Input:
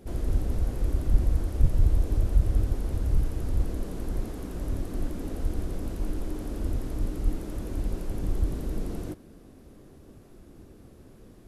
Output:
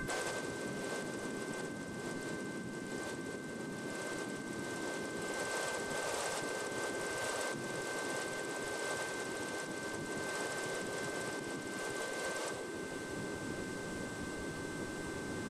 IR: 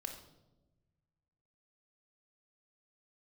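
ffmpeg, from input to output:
-filter_complex "[0:a]asplit=2[link_01][link_02];[link_02]alimiter=limit=-15.5dB:level=0:latency=1:release=309,volume=1dB[link_03];[link_01][link_03]amix=inputs=2:normalize=0,acontrast=36,aeval=exprs='val(0)+0.0112*sin(2*PI*2100*n/s)':channel_layout=same,asplit=2[link_04][link_05];[1:a]atrim=start_sample=2205,adelay=124[link_06];[link_05][link_06]afir=irnorm=-1:irlink=0,volume=5dB[link_07];[link_04][link_07]amix=inputs=2:normalize=0,acompressor=threshold=-16dB:ratio=12,asetrate=32667,aresample=44100,afftfilt=real='re*lt(hypot(re,im),0.112)':imag='im*lt(hypot(re,im),0.112)':win_size=1024:overlap=0.75,lowshelf=frequency=200:gain=-5.5,asplit=4[link_08][link_09][link_10][link_11];[link_09]asetrate=29433,aresample=44100,atempo=1.49831,volume=-12dB[link_12];[link_10]asetrate=33038,aresample=44100,atempo=1.33484,volume=-15dB[link_13];[link_11]asetrate=58866,aresample=44100,atempo=0.749154,volume=-11dB[link_14];[link_08][link_12][link_13][link_14]amix=inputs=4:normalize=0"

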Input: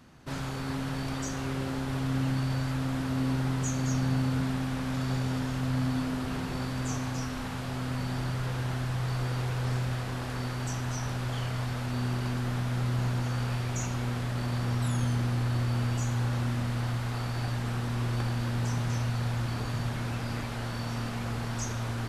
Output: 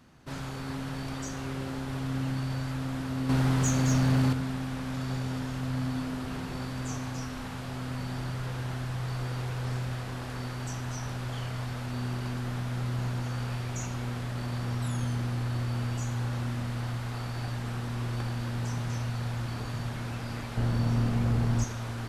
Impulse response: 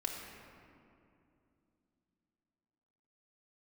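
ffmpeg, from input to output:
-filter_complex "[0:a]asettb=1/sr,asplit=3[link_01][link_02][link_03];[link_01]atrim=end=3.294[link_04];[link_02]atrim=start=3.29:end=4.33,asetpts=PTS-STARTPTS,afade=type=in:duration=0.004:curve=qsin,afade=type=out:start_time=1.036:duration=0.004:curve=qsin,acontrast=80[link_05];[link_03]atrim=start=4.326[link_06];[link_04][link_05]acrossfade=duration=0.004:curve1=hsin:curve2=qsin[link_07];[link_07][link_06]acrossfade=duration=0.004:curve1=qsin:curve2=hsin,asettb=1/sr,asplit=3[link_08][link_09][link_10];[link_08]atrim=end=20.574[link_11];[link_09]atrim=start=20.57:end=21.64,asetpts=PTS-STARTPTS,afade=type=in:duration=0.004:curve=qsin,afade=type=out:start_time=1.066:duration=0.004:curve=qsin,lowshelf=frequency=500:gain=11.5[link_12];[link_10]atrim=start=21.636[link_13];[link_11][link_12]acrossfade=duration=0.004:curve1=hsin:curve2=qsin[link_14];[link_14][link_13]acrossfade=duration=0.004:curve1=qsin:curve2=hsin,volume=16.5dB,asoftclip=hard,volume=-16.5dB,volume=-2.5dB"

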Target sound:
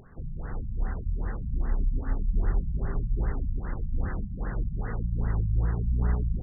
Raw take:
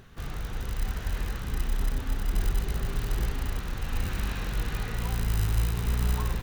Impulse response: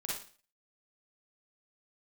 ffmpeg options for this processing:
-af "bandreject=frequency=50:width_type=h:width=6,bandreject=frequency=100:width_type=h:width=6,afftfilt=real='re*lt(b*sr/1024,200*pow(2100/200,0.5+0.5*sin(2*PI*2.5*pts/sr)))':imag='im*lt(b*sr/1024,200*pow(2100/200,0.5+0.5*sin(2*PI*2.5*pts/sr)))':win_size=1024:overlap=0.75,volume=1.5dB"

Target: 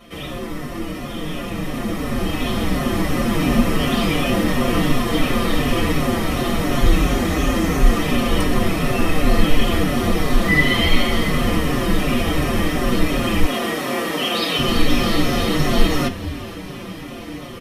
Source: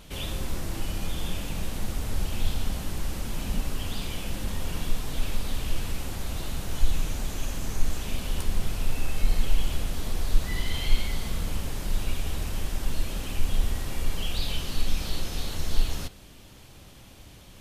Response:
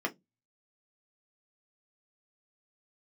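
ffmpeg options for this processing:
-filter_complex "[1:a]atrim=start_sample=2205[link_01];[0:a][link_01]afir=irnorm=-1:irlink=0,asettb=1/sr,asplit=3[link_02][link_03][link_04];[link_02]atrim=end=6.844[link_05];[link_03]atrim=start=6.84:end=7.91,asetpts=PTS-STARTPTS,afade=type=in:duration=0.004:curve=qsin,afade=type=out:start_time=1.066:duration=0.004:curve=qsin,afreqshift=21[link_06];[link_04]atrim=start=7.906[link_07];[link_05][link_06]acrossfade=duration=0.004:curve1=hsin:curve2=qsin[link_08];[link_08][link_07]acrossfade=duration=0.004:curve1=qsin:curve2=hsin,asplit=7[link_09][link_10][link_11][link_12][link_13][link_14][link_15];[link_10]adelay=470,afreqshift=-100,volume=-18dB[link_16];[link_11]adelay=940,afreqshift=-200,volume=-21.9dB[link_17];[link_12]adelay=1410,afreqshift=-300,volume=-25.8dB[link_18];[link_13]adelay=1880,afreqshift=-400,volume=-29.6dB[link_19];[link_14]adelay=2350,afreqshift=-500,volume=-33.5dB[link_20];[link_15]adelay=2820,afreqshift=-600,volume=-37.4dB[link_21];[link_09][link_16][link_17][link_18][link_19][link_20][link_21]amix=inputs=7:normalize=0,dynaudnorm=framelen=530:gausssize=9:maxgain=12dB,asettb=1/sr,asplit=3[link_22][link_23][link_24];[link_22]atrim=end=13.444[link_25];[link_23]atrim=start=13.44:end=14.59,asetpts=PTS-STARTPTS,afade=type=in:duration=0.004:curve=qsin,afade=type=out:start_time=1.146:duration=0.004:curve=qsin,highpass=280[link_26];[link_24]atrim=start=14.586[link_27];[link_25][link_26]acrossfade=duration=0.004:curve1=hsin:curve2=qsin[link_28];[link_28][link_27]acrossfade=duration=0.004:curve1=qsin:curve2=hsin,asplit=2[link_29][link_30];[link_30]adelay=5.2,afreqshift=-2.8[link_31];[link_29][link_31]amix=inputs=2:normalize=1,volume=4.5dB"

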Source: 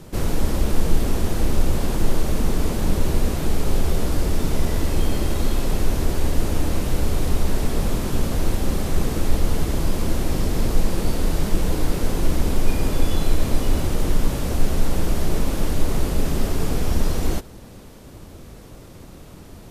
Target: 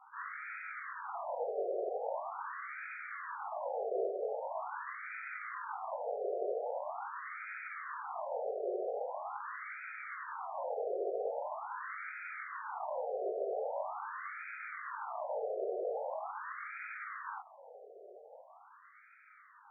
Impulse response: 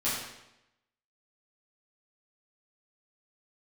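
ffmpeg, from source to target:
-af "flanger=delay=19.5:depth=2.5:speed=0.53,afftfilt=real='re*between(b*sr/1024,520*pow(1800/520,0.5+0.5*sin(2*PI*0.43*pts/sr))/1.41,520*pow(1800/520,0.5+0.5*sin(2*PI*0.43*pts/sr))*1.41)':imag='im*between(b*sr/1024,520*pow(1800/520,0.5+0.5*sin(2*PI*0.43*pts/sr))/1.41,520*pow(1800/520,0.5+0.5*sin(2*PI*0.43*pts/sr))*1.41)':win_size=1024:overlap=0.75,volume=1.5dB"

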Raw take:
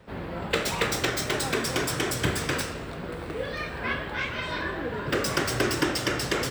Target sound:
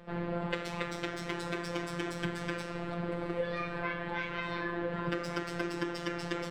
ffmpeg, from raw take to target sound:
ffmpeg -i in.wav -af "afftfilt=real='hypot(re,im)*cos(PI*b)':imag='0':win_size=1024:overlap=0.75,acompressor=threshold=-31dB:ratio=20,aemphasis=mode=reproduction:type=75fm,volume=3dB" out.wav

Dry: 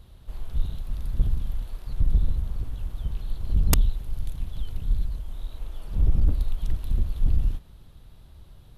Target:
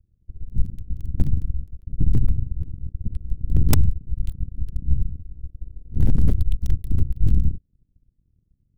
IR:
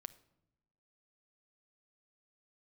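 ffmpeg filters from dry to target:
-filter_complex "[0:a]acrossover=split=350[link_01][link_02];[link_02]acompressor=threshold=-23dB:ratio=5[link_03];[link_01][link_03]amix=inputs=2:normalize=0,acrossover=split=350[link_04][link_05];[link_05]aeval=exprs='val(0)*gte(abs(val(0)),0.00841)':channel_layout=same[link_06];[link_04][link_06]amix=inputs=2:normalize=0,aeval=exprs='0.531*(cos(1*acos(clip(val(0)/0.531,-1,1)))-cos(1*PI/2))+0.211*(cos(3*acos(clip(val(0)/0.531,-1,1)))-cos(3*PI/2))+0.211*(cos(4*acos(clip(val(0)/0.531,-1,1)))-cos(4*PI/2))+0.15*(cos(8*acos(clip(val(0)/0.531,-1,1)))-cos(8*PI/2))':channel_layout=same,volume=-2dB"

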